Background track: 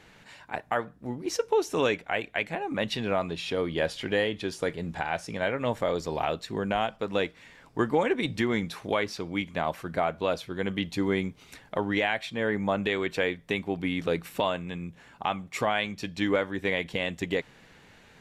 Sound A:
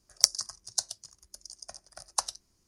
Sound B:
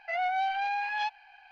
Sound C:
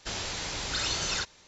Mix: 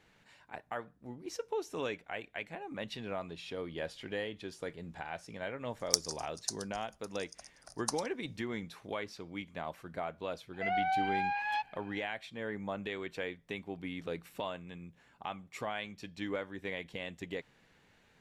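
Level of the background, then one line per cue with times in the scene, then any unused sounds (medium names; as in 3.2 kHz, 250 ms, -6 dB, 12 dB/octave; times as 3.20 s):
background track -11.5 dB
5.70 s: add A -7 dB
10.53 s: add B -2 dB + distance through air 130 m
not used: C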